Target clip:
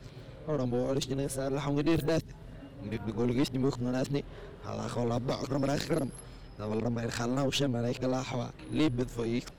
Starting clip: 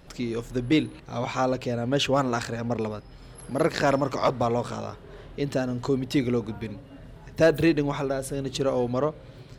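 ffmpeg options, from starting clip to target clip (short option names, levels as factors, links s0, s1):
-filter_complex "[0:a]areverse,acrossover=split=410|3000[s0][s1][s2];[s1]acompressor=threshold=0.02:ratio=6[s3];[s0][s3][s2]amix=inputs=3:normalize=0,aeval=exprs='(tanh(12.6*val(0)+0.45)-tanh(0.45))/12.6':c=same"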